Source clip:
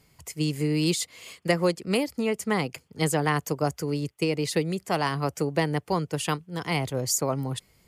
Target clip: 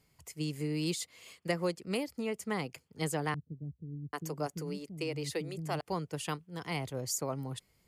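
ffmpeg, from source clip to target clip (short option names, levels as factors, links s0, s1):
-filter_complex "[0:a]asettb=1/sr,asplit=3[s0][s1][s2];[s0]atrim=end=3.344[s3];[s1]atrim=start=3.34:end=5.81,asetpts=PTS-STARTPTS,afade=t=in:d=0.004:c=qsin,afade=t=out:st=2.466:d=0.004:c=qsin,acrossover=split=250[s4][s5];[s5]adelay=790[s6];[s4][s6]amix=inputs=2:normalize=0,atrim=end_sample=108927[s7];[s2]atrim=start=5.806[s8];[s3][s7]acrossfade=d=0.004:c1=hsin:c2=qsin[s9];[s9][s8]acrossfade=d=0.004:c1=qsin:c2=hsin,volume=0.355"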